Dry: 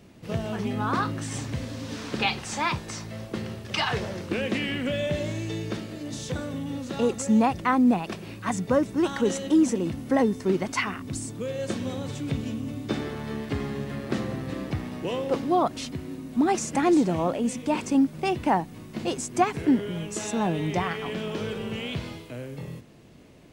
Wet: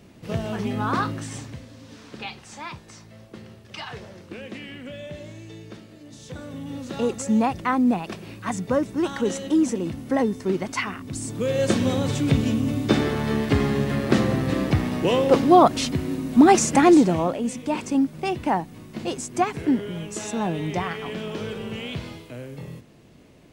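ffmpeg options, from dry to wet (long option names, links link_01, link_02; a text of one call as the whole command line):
ffmpeg -i in.wav -af "volume=20.5dB,afade=type=out:start_time=1.02:duration=0.61:silence=0.266073,afade=type=in:start_time=6.18:duration=0.68:silence=0.334965,afade=type=in:start_time=11.14:duration=0.45:silence=0.354813,afade=type=out:start_time=16.61:duration=0.76:silence=0.354813" out.wav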